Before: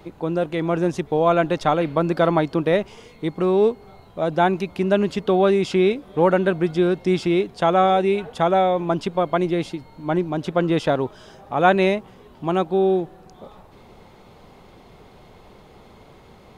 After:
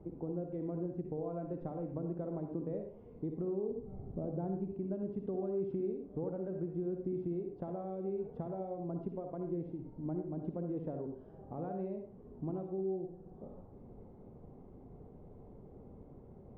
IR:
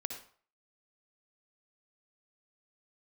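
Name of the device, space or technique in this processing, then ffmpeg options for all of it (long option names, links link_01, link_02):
television next door: -filter_complex "[0:a]asettb=1/sr,asplit=3[link_01][link_02][link_03];[link_01]atrim=end=3.704[link_04];[link_02]atrim=start=3.7:end=4.73,asetpts=PTS-STARTPTS,afade=type=in:duration=0.004:curve=qsin,afade=type=out:start_time=1.026:duration=0.004:curve=qsin,lowshelf=frequency=500:gain=9.5[link_05];[link_03]atrim=start=4.726[link_06];[link_04][link_05]acrossfade=duration=0.004:curve1=hsin:curve2=qsin[link_07];[link_07][link_06]acrossfade=duration=0.004:curve1=qsin:curve2=hsin,acompressor=threshold=-31dB:ratio=4,lowpass=420[link_08];[1:a]atrim=start_sample=2205[link_09];[link_08][link_09]afir=irnorm=-1:irlink=0,volume=-3.5dB"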